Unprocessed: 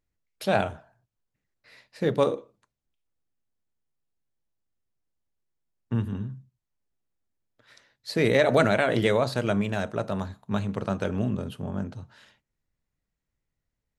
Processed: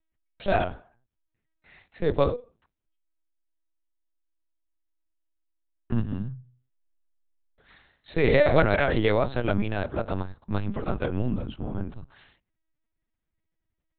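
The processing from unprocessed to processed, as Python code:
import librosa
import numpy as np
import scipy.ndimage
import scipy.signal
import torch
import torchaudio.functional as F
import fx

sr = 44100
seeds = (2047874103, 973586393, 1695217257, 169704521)

y = fx.low_shelf(x, sr, hz=160.0, db=2.5)
y = fx.room_flutter(y, sr, wall_m=7.0, rt60_s=0.44, at=(6.36, 8.62))
y = fx.lpc_vocoder(y, sr, seeds[0], excitation='pitch_kept', order=10)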